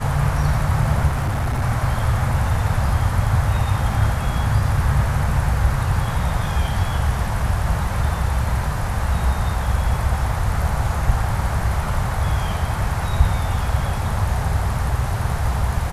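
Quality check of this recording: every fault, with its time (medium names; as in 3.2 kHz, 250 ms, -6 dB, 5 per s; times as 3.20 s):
1.07–1.63 s: clipped -17.5 dBFS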